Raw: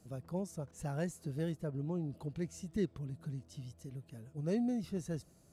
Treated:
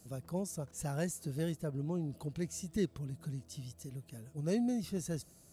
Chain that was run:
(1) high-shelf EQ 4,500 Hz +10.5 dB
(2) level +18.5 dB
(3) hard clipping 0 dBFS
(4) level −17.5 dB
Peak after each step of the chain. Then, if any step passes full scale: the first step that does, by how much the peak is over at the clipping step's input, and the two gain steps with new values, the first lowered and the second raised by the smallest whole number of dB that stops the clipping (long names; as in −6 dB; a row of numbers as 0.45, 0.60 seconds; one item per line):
−24.0, −5.5, −5.5, −23.0 dBFS
no step passes full scale